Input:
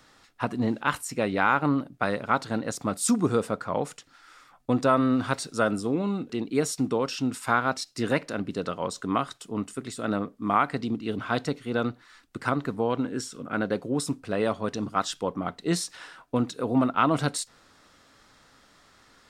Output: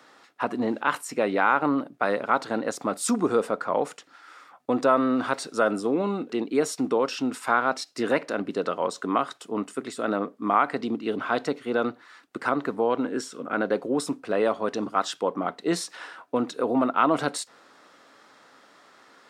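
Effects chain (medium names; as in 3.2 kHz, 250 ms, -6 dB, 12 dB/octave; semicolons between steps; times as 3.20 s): treble shelf 2.7 kHz -9.5 dB; in parallel at +1.5 dB: peak limiter -20 dBFS, peak gain reduction 10.5 dB; on the sum: high-pass 320 Hz 12 dB/octave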